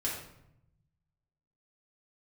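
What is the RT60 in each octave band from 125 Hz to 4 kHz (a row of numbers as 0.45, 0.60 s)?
1.6, 1.2, 0.85, 0.75, 0.65, 0.55 s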